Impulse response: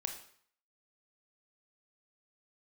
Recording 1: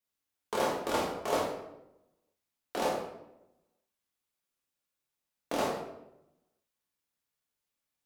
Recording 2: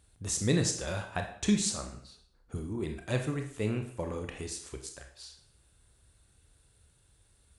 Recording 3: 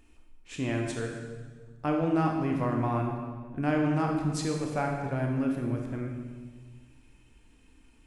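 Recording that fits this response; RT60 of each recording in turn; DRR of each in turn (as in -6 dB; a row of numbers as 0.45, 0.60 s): 2; 0.90, 0.55, 1.5 s; -4.0, 4.0, 0.5 dB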